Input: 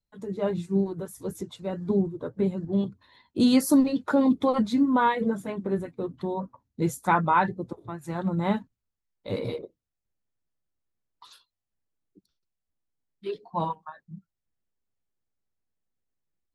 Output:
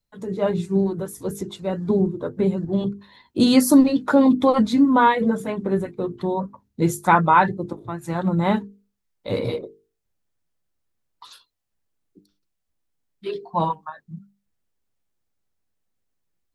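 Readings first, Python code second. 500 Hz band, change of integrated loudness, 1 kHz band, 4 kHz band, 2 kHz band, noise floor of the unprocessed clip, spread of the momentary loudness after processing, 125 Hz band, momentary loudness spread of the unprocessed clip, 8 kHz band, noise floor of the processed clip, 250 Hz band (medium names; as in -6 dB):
+6.0 dB, +6.0 dB, +6.5 dB, +6.5 dB, +6.5 dB, -85 dBFS, 17 LU, +5.5 dB, 15 LU, +6.5 dB, -77 dBFS, +5.5 dB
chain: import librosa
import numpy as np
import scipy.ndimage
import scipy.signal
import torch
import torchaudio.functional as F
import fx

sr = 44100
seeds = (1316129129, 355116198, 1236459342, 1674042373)

y = fx.hum_notches(x, sr, base_hz=50, count=9)
y = y * 10.0 ** (6.5 / 20.0)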